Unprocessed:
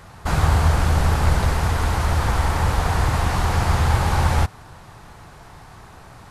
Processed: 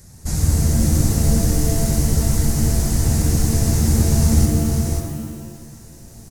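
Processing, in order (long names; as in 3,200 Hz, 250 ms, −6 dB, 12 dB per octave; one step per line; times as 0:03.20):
drawn EQ curve 250 Hz 0 dB, 1,200 Hz −22 dB, 1,900 Hz −11 dB, 3,000 Hz −15 dB, 6,000 Hz +8 dB
on a send: single-tap delay 543 ms −4 dB
on the sum: reverb with rising layers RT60 1.2 s, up +7 semitones, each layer −2 dB, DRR 5 dB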